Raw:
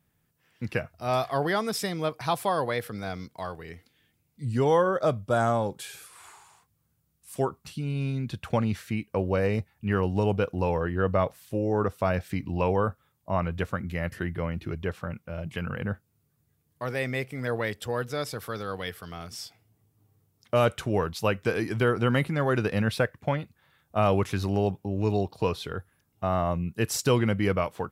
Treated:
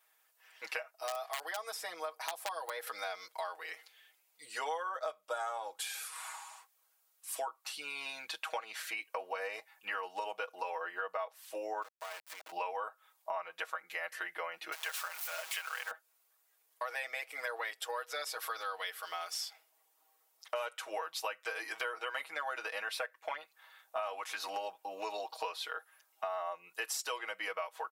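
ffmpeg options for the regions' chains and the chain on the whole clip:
ffmpeg -i in.wav -filter_complex "[0:a]asettb=1/sr,asplit=3[link_01][link_02][link_03];[link_01]atrim=end=0.904[link_04];[link_02]atrim=start=0.9:end=2.87,asetpts=PTS-STARTPTS,afade=type=in:duration=0.004:curve=qsin,afade=type=out:start_time=1.966:duration=0.004:curve=qsin,equalizer=frequency=2000:width=0.4:gain=-6.5,acrossover=split=760|1900[link_05][link_06][link_07];[link_05]acompressor=threshold=-35dB:ratio=4[link_08];[link_06]acompressor=threshold=-38dB:ratio=4[link_09];[link_07]acompressor=threshold=-49dB:ratio=4[link_10];[link_08][link_09][link_10]amix=inputs=3:normalize=0,aeval=exprs='(mod(15.8*val(0)+1,2)-1)/15.8':channel_layout=same[link_11];[link_03]atrim=start=2.866[link_12];[link_04][link_11]acrossfade=duration=0.004:curve1=hsin:curve2=qsin[link_13];[link_13][link_12]acrossfade=duration=0.004:curve1=qsin:curve2=hsin,asettb=1/sr,asplit=3[link_14][link_15][link_16];[link_14]atrim=end=11.824[link_17];[link_15]atrim=start=11.82:end=12.52,asetpts=PTS-STARTPTS,afade=type=in:duration=0.004:curve=qsin,afade=type=out:start_time=0.696:duration=0.004:curve=qsin,acompressor=threshold=-41dB:ratio=6:attack=3.2:release=140:knee=1:detection=peak,aeval=exprs='val(0)*gte(abs(val(0)),0.0075)':channel_layout=same[link_18];[link_16]atrim=start=12.516[link_19];[link_17][link_18]acrossfade=duration=0.004:curve1=hsin:curve2=qsin[link_20];[link_20][link_19]acrossfade=duration=0.004:curve1=qsin:curve2=hsin,asettb=1/sr,asplit=3[link_21][link_22][link_23];[link_21]atrim=end=14.724[link_24];[link_22]atrim=start=14.72:end=15.91,asetpts=PTS-STARTPTS,afade=type=in:duration=0.004:curve=qsin,afade=type=out:start_time=1.186:duration=0.004:curve=qsin,aeval=exprs='val(0)+0.5*0.0106*sgn(val(0))':channel_layout=same,highpass=800,highshelf=frequency=3700:gain=9.5[link_25];[link_23]atrim=start=15.906[link_26];[link_24][link_25]acrossfade=duration=0.004:curve1=hsin:curve2=qsin[link_27];[link_27][link_26]acrossfade=duration=0.004:curve1=qsin:curve2=hsin,asettb=1/sr,asplit=3[link_28][link_29][link_30];[link_28]atrim=end=18.854[link_31];[link_29]atrim=start=18.85:end=19.4,asetpts=PTS-STARTPTS,afade=type=in:duration=0.004:curve=qsin,afade=type=out:start_time=0.546:duration=0.004:curve=qsin,deesser=0.75,aeval=exprs='val(0)*gte(abs(val(0)),0.001)':channel_layout=same[link_32];[link_30]atrim=start=19.396[link_33];[link_31][link_32]acrossfade=duration=0.004:curve1=hsin:curve2=qsin[link_34];[link_34][link_33]acrossfade=duration=0.004:curve1=qsin:curve2=hsin,highpass=frequency=670:width=0.5412,highpass=frequency=670:width=1.3066,aecho=1:1:6.3:0.94,acompressor=threshold=-39dB:ratio=6,volume=3dB" out.wav

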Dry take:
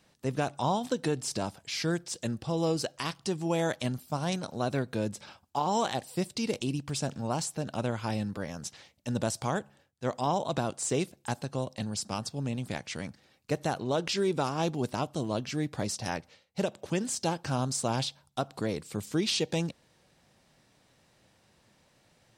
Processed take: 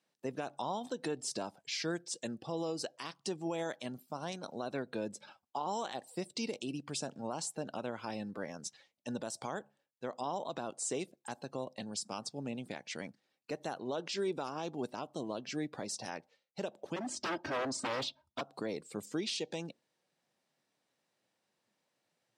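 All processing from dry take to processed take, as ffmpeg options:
ffmpeg -i in.wav -filter_complex "[0:a]asettb=1/sr,asplit=3[link_01][link_02][link_03];[link_01]atrim=end=16.964[link_04];[link_02]atrim=start=16.96:end=18.41,asetpts=PTS-STARTPTS,afade=type=in:duration=0.004:curve=qsin,afade=type=out:start_time=1.446:duration=0.004:curve=qsin,aemphasis=mode=reproduction:type=bsi,aecho=1:1:3.2:0.96,atrim=end_sample=63945,aeval=exprs='0.0501*(abs(mod(val(0)/0.0501+3,4)-2)-1)':channel_layout=same[link_05];[link_03]atrim=start=18.406[link_06];[link_04][link_05]acrossfade=duration=0.004:curve1=hsin:curve2=qsin[link_07];[link_07][link_06]acrossfade=duration=0.004:curve1=qsin:curve2=hsin,afftdn=noise_reduction=13:noise_floor=-48,highpass=240,alimiter=limit=-24dB:level=0:latency=1:release=201,volume=-2.5dB" out.wav

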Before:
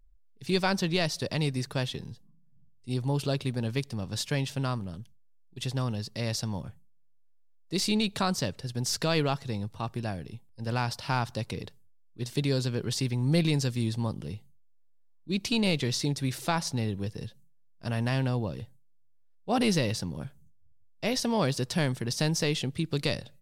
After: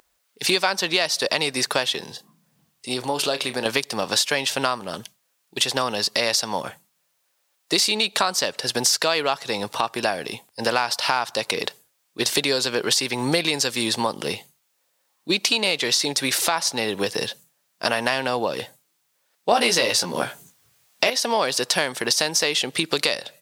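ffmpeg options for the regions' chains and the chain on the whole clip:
ffmpeg -i in.wav -filter_complex "[0:a]asettb=1/sr,asplit=3[link_01][link_02][link_03];[link_01]atrim=end=2.044[link_04];[link_02]atrim=start=2.04:end=3.66,asetpts=PTS-STARTPTS,afade=type=in:duration=0.004:curve=qsin,afade=type=out:start_time=1.616:duration=0.004:curve=qsin,acompressor=threshold=-43dB:ratio=2:attack=3.2:release=140:knee=1:detection=peak,asplit=2[link_05][link_06];[link_06]adelay=32,volume=-12.5dB[link_07];[link_05][link_07]amix=inputs=2:normalize=0,atrim=end_sample=71442[link_08];[link_03]atrim=start=3.656[link_09];[link_04][link_08]acrossfade=duration=0.004:curve1=hsin:curve2=qsin[link_10];[link_10][link_09]acrossfade=duration=0.004:curve1=qsin:curve2=hsin,asettb=1/sr,asplit=3[link_11][link_12][link_13];[link_11]atrim=end=19.514[link_14];[link_12]atrim=start=19.51:end=21.1,asetpts=PTS-STARTPTS,afade=type=in:duration=0.004:curve=qsin,afade=type=out:start_time=1.586:duration=0.004:curve=qsin,acontrast=81,asplit=2[link_15][link_16];[link_16]adelay=17,volume=-4.5dB[link_17];[link_15][link_17]amix=inputs=2:normalize=0,atrim=end_sample=70119[link_18];[link_13]atrim=start=21.096[link_19];[link_14][link_18]acrossfade=duration=0.004:curve1=hsin:curve2=qsin[link_20];[link_20][link_19]acrossfade=duration=0.004:curve1=qsin:curve2=hsin,highpass=580,acompressor=threshold=-45dB:ratio=5,alimiter=level_in=28.5dB:limit=-1dB:release=50:level=0:latency=1,volume=-3dB" out.wav

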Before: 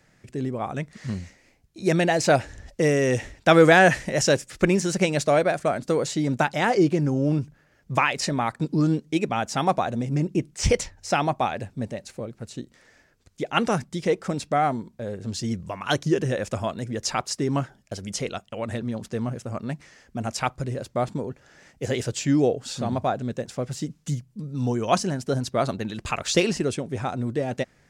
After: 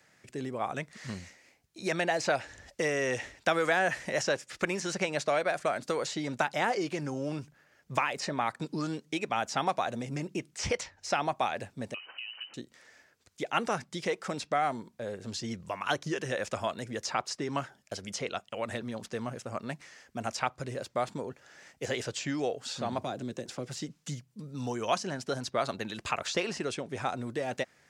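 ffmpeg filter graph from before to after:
ffmpeg -i in.wav -filter_complex "[0:a]asettb=1/sr,asplit=3[link_01][link_02][link_03];[link_01]atrim=end=11.944[link_04];[link_02]atrim=start=11.94:end=12.54,asetpts=PTS-STARTPTS,afade=type=in:duration=0.004:curve=qsin,afade=type=out:start_time=0.596:duration=0.004:curve=qsin,aeval=exprs='val(0)+0.5*0.00596*sgn(val(0))':channel_layout=same,lowpass=frequency=2600:width_type=q:width=0.5098,lowpass=frequency=2600:width_type=q:width=0.6013,lowpass=frequency=2600:width_type=q:width=0.9,lowpass=frequency=2600:width_type=q:width=2.563,afreqshift=-3100,acompressor=threshold=-36dB:ratio=5:attack=3.2:release=140:knee=1:detection=peak[link_05];[link_03]atrim=start=12.536[link_06];[link_04][link_05]acrossfade=duration=0.004:curve1=hsin:curve2=qsin[link_07];[link_07][link_06]acrossfade=duration=0.004:curve1=qsin:curve2=hsin,asettb=1/sr,asplit=3[link_08][link_09][link_10];[link_08]atrim=end=22.984[link_11];[link_09]atrim=start=22.98:end=23.68,asetpts=PTS-STARTPTS,afade=type=in:duration=0.004:curve=qsin,afade=type=out:start_time=0.696:duration=0.004:curve=qsin,equalizer=frequency=360:width_type=o:width=1.1:gain=10,acrossover=split=230|3000[link_12][link_13][link_14];[link_13]acompressor=threshold=-31dB:ratio=4:attack=3.2:release=140:knee=2.83:detection=peak[link_15];[link_12][link_15][link_14]amix=inputs=3:normalize=0,bandreject=frequency=430:width=8.7[link_16];[link_10]atrim=start=23.676[link_17];[link_11][link_16]acrossfade=duration=0.004:curve1=hsin:curve2=qsin[link_18];[link_18][link_17]acrossfade=duration=0.004:curve1=qsin:curve2=hsin,highpass=64,lowshelf=frequency=360:gain=-11.5,acrossover=split=700|1700|6600[link_19][link_20][link_21][link_22];[link_19]acompressor=threshold=-32dB:ratio=4[link_23];[link_20]acompressor=threshold=-30dB:ratio=4[link_24];[link_21]acompressor=threshold=-36dB:ratio=4[link_25];[link_22]acompressor=threshold=-54dB:ratio=4[link_26];[link_23][link_24][link_25][link_26]amix=inputs=4:normalize=0" out.wav

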